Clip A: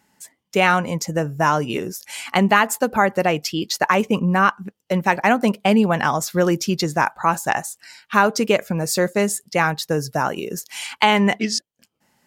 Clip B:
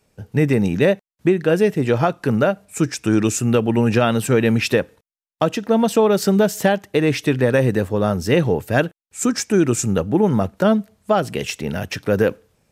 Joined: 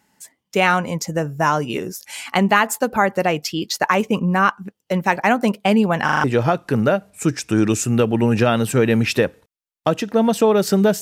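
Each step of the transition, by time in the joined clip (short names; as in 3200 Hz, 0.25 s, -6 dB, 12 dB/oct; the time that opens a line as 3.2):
clip A
6.04 stutter in place 0.04 s, 5 plays
6.24 switch to clip B from 1.79 s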